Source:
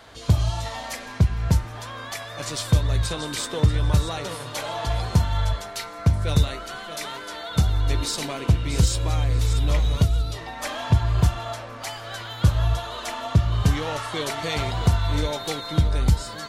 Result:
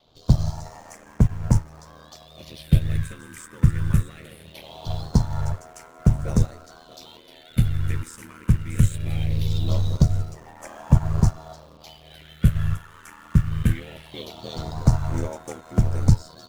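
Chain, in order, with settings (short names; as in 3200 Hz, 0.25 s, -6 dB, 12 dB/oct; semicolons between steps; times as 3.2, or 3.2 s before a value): phaser stages 4, 0.21 Hz, lowest notch 660–3800 Hz; ring modulator 40 Hz; in parallel at -11 dB: requantised 6-bit, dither none; on the sum: upward expander 1.5:1, over -32 dBFS; gain +2.5 dB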